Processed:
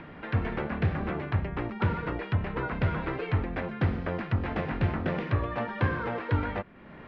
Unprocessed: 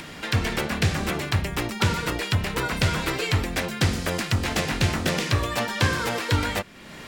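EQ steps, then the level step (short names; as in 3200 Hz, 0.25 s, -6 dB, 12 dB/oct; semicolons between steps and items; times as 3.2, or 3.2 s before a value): LPF 1800 Hz 12 dB/oct; air absorption 200 m; -3.5 dB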